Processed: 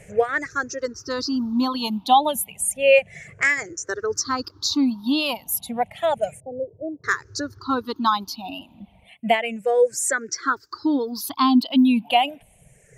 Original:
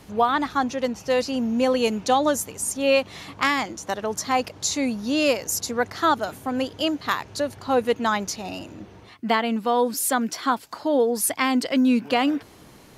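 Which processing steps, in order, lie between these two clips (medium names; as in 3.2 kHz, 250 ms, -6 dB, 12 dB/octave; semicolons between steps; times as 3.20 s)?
drifting ripple filter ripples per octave 0.51, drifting -0.31 Hz, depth 22 dB; reverb removal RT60 1.9 s; 6.40–7.04 s: rippled Chebyshev low-pass 950 Hz, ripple 6 dB; trim -3.5 dB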